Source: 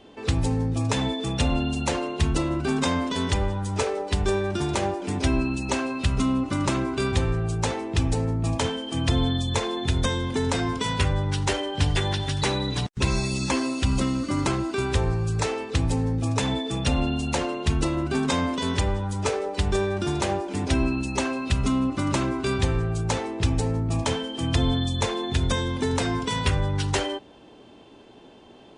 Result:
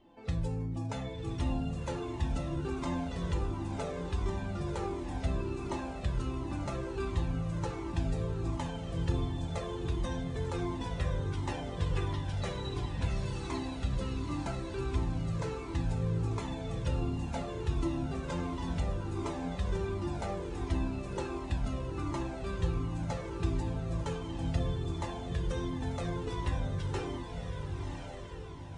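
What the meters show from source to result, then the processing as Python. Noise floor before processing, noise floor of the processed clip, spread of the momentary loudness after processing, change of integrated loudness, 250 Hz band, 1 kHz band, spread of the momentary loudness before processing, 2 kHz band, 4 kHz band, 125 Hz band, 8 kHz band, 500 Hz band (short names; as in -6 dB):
-49 dBFS, -41 dBFS, 4 LU, -10.0 dB, -11.0 dB, -11.0 dB, 3 LU, -14.0 dB, -16.5 dB, -8.0 dB, -17.5 dB, -10.5 dB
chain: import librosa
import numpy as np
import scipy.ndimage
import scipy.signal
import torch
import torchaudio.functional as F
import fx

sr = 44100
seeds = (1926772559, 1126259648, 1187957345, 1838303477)

y = fx.high_shelf(x, sr, hz=2000.0, db=-11.0)
y = fx.comb_fb(y, sr, f0_hz=170.0, decay_s=0.42, harmonics='all', damping=0.0, mix_pct=80)
y = fx.echo_diffused(y, sr, ms=1065, feedback_pct=50, wet_db=-4.5)
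y = fx.comb_cascade(y, sr, direction='falling', hz=1.4)
y = y * 10.0 ** (5.0 / 20.0)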